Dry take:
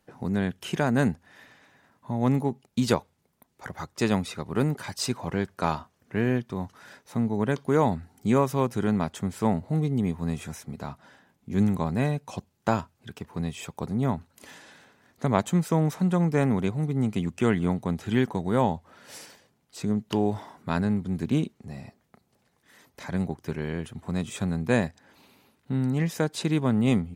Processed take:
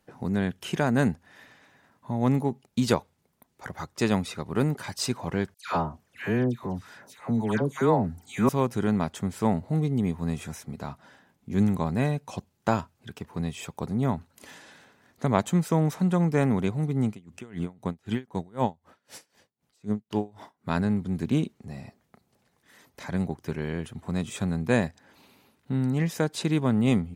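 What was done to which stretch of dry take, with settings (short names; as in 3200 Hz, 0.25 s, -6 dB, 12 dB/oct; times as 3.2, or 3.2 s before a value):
5.54–8.49 dispersion lows, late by 0.135 s, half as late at 1400 Hz
17.1–20.69 dB-linear tremolo 3.9 Hz, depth 28 dB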